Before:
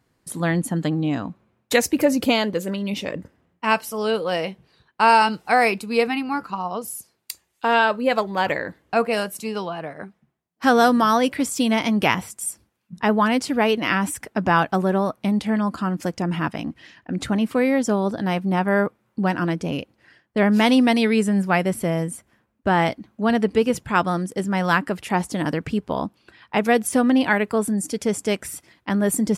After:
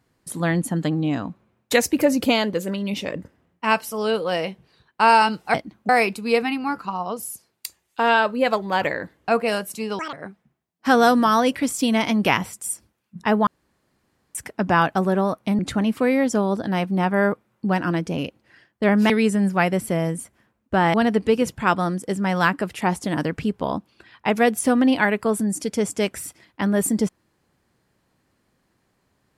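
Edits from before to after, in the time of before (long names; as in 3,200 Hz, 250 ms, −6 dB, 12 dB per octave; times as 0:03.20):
0:09.64–0:09.90: play speed 188%
0:13.24–0:14.12: fill with room tone
0:15.36–0:17.13: remove
0:20.64–0:21.03: remove
0:22.87–0:23.22: move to 0:05.54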